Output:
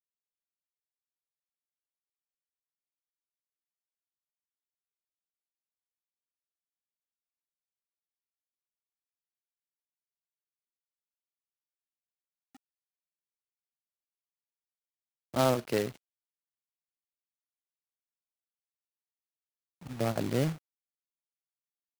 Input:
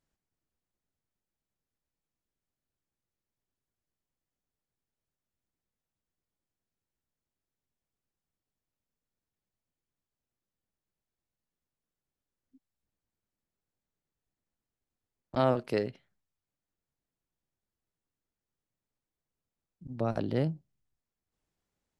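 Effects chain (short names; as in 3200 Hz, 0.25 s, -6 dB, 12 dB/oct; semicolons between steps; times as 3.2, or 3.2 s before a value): HPF 67 Hz 24 dB/oct; companded quantiser 4-bit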